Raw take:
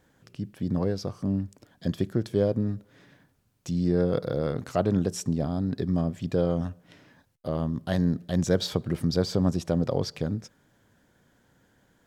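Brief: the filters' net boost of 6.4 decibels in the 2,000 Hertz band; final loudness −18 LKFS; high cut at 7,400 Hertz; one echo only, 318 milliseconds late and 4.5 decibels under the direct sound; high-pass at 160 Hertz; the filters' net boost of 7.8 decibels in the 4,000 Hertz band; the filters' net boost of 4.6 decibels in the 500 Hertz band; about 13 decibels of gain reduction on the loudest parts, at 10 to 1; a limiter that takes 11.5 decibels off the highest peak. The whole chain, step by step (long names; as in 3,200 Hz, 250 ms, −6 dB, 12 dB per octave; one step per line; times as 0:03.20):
high-pass filter 160 Hz
low-pass filter 7,400 Hz
parametric band 500 Hz +5 dB
parametric band 2,000 Hz +6.5 dB
parametric band 4,000 Hz +8.5 dB
downward compressor 10 to 1, threshold −29 dBFS
brickwall limiter −26 dBFS
single-tap delay 318 ms −4.5 dB
level +18.5 dB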